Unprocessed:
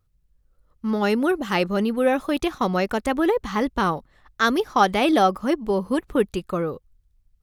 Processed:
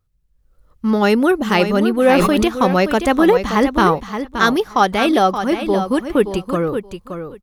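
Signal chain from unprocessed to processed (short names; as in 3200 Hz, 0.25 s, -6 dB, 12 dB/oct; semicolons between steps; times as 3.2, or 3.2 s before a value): AGC gain up to 11.5 dB; on a send: feedback echo 0.574 s, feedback 15%, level -9 dB; 1.93–2.44 on the sum: sustainer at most 23 dB/s; gain -1 dB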